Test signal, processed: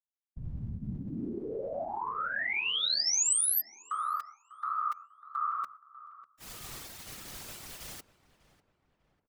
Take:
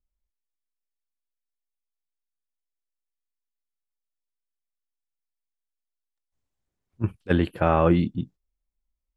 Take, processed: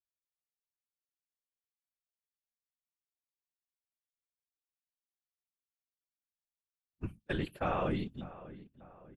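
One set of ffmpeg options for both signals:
-filter_complex "[0:a]bandreject=f=60:t=h:w=6,bandreject=f=120:t=h:w=6,bandreject=f=180:t=h:w=6,agate=range=0.1:threshold=0.0178:ratio=16:detection=peak,afftfilt=real='hypot(re,im)*cos(2*PI*random(0))':imag='hypot(re,im)*sin(2*PI*random(1))':win_size=512:overlap=0.75,highshelf=f=2300:g=9.5,asplit=2[s0][s1];[s1]adelay=596,lowpass=f=1900:p=1,volume=0.15,asplit=2[s2][s3];[s3]adelay=596,lowpass=f=1900:p=1,volume=0.47,asplit=2[s4][s5];[s5]adelay=596,lowpass=f=1900:p=1,volume=0.47,asplit=2[s6][s7];[s7]adelay=596,lowpass=f=1900:p=1,volume=0.47[s8];[s2][s4][s6][s8]amix=inputs=4:normalize=0[s9];[s0][s9]amix=inputs=2:normalize=0,volume=0.447"

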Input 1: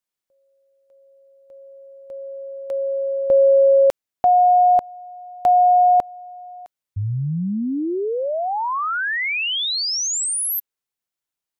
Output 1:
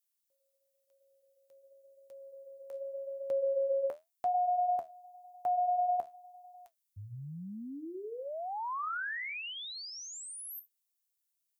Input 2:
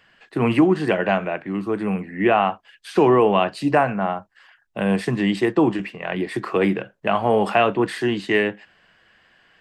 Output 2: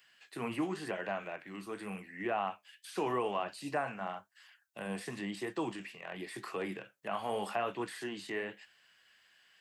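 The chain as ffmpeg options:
-filter_complex "[0:a]acrossover=split=3100[s0][s1];[s1]acompressor=threshold=0.0224:ratio=4:attack=1:release=60[s2];[s0][s2]amix=inputs=2:normalize=0,flanger=delay=6.7:depth=7.5:regen=-63:speed=0.91:shape=triangular,aderivative,acrossover=split=1500[s3][s4];[s4]acompressor=threshold=0.00355:ratio=6:attack=0.12:release=50:knee=1:detection=rms[s5];[s3][s5]amix=inputs=2:normalize=0,equalizer=f=71:w=0.31:g=14.5,volume=2"

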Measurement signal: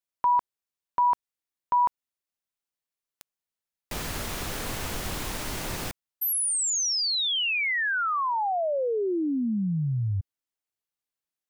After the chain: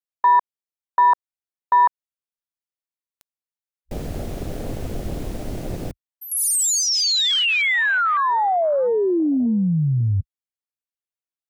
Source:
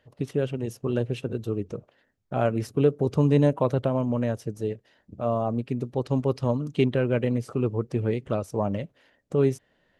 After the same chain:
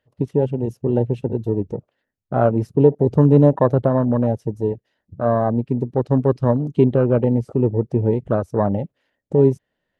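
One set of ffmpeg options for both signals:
-af "afwtdn=0.0282,volume=2.37"

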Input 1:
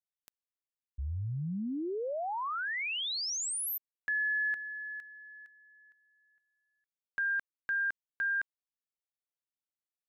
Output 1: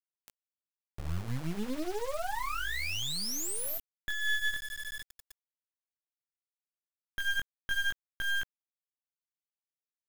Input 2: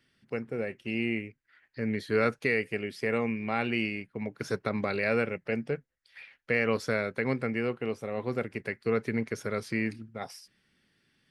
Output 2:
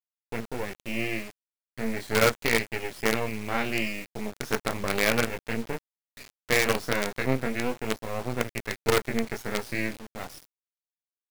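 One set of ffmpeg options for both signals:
-af "flanger=delay=17:depth=7.2:speed=0.36,acrusher=bits=5:dc=4:mix=0:aa=0.000001,volume=2.24"

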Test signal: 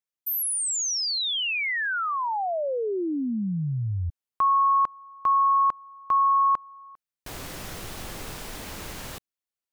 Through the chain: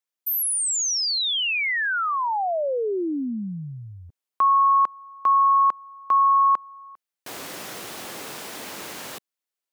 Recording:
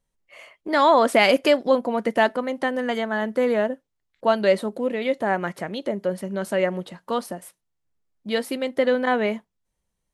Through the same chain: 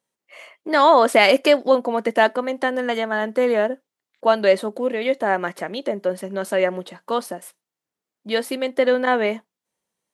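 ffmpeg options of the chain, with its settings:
-af "highpass=250,volume=1.41"

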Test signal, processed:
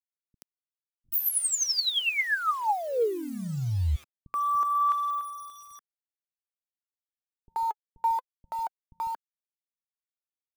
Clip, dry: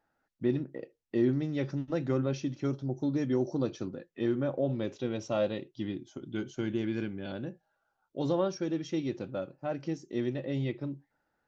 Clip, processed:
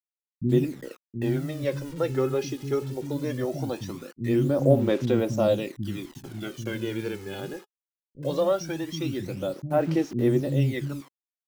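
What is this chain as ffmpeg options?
-filter_complex "[0:a]acrusher=bits=8:mix=0:aa=0.000001,acrossover=split=240[s0][s1];[s1]adelay=80[s2];[s0][s2]amix=inputs=2:normalize=0,aphaser=in_gain=1:out_gain=1:delay=2.4:decay=0.6:speed=0.2:type=sinusoidal,volume=1.68"

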